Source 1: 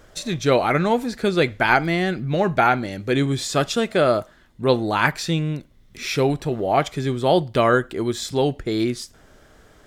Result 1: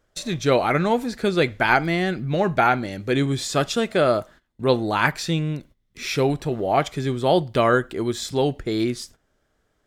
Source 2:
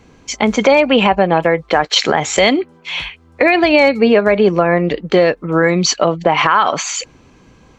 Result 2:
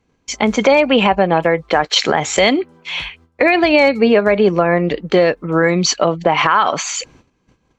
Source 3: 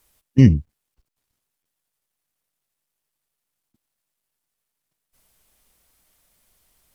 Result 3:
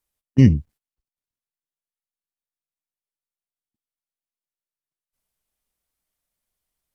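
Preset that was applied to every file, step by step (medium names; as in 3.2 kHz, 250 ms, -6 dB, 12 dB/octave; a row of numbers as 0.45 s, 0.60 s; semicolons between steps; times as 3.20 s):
gate -43 dBFS, range -17 dB; peak normalisation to -2 dBFS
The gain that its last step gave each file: -1.0 dB, -1.0 dB, -1.0 dB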